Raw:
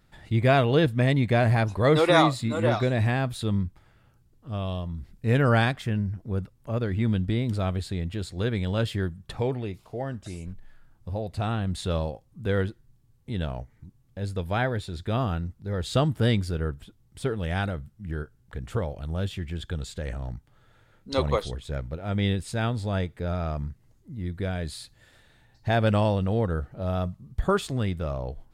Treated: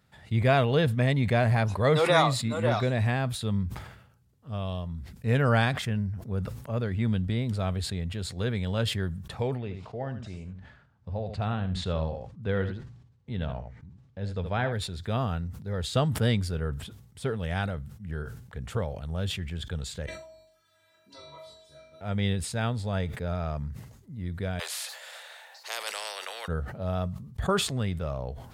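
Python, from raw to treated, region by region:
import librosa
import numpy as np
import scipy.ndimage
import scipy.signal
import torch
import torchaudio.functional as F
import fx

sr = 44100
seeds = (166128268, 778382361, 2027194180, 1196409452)

y = fx.chain(x, sr, fx.air_absorb(metres=120.0),
    fx.echo_single(ms=75, db=-11.5), at=(9.58, 14.73))
y = fx.chain(y, sr, fx.stiff_resonator(f0_hz=320.0, decay_s=0.47, stiffness=0.002),
    fx.room_flutter(wall_m=3.5, rt60_s=0.61),
    fx.band_squash(depth_pct=70), at=(20.06, 22.01))
y = fx.chain(y, sr, fx.steep_highpass(hz=530.0, slope=48),
    fx.spectral_comp(ratio=4.0), at=(24.59, 26.48))
y = scipy.signal.sosfilt(scipy.signal.butter(4, 59.0, 'highpass', fs=sr, output='sos'), y)
y = fx.peak_eq(y, sr, hz=320.0, db=-10.5, octaves=0.25)
y = fx.sustainer(y, sr, db_per_s=68.0)
y = F.gain(torch.from_numpy(y), -2.0).numpy()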